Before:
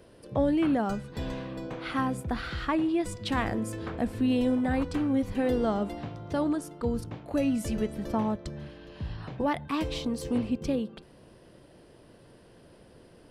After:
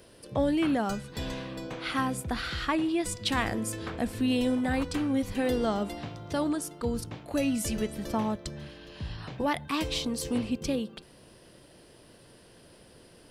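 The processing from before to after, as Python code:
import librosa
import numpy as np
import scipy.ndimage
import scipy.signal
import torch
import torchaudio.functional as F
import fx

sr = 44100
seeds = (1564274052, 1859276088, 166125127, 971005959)

y = fx.high_shelf(x, sr, hz=2300.0, db=10.5)
y = y * librosa.db_to_amplitude(-1.5)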